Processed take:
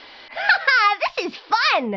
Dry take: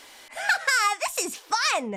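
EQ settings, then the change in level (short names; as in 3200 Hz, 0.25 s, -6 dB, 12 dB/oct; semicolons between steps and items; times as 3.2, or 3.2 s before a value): steep low-pass 5000 Hz 72 dB/oct; +6.5 dB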